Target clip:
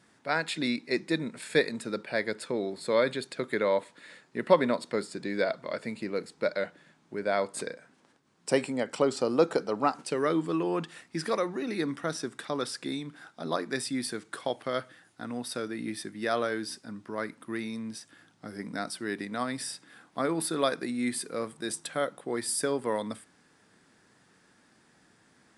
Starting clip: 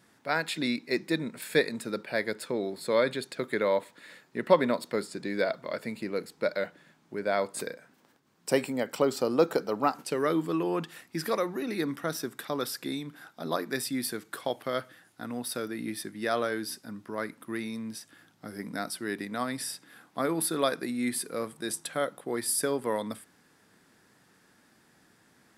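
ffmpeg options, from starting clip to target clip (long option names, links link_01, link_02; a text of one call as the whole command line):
ffmpeg -i in.wav -ar 22050 -c:a aac -b:a 96k out.aac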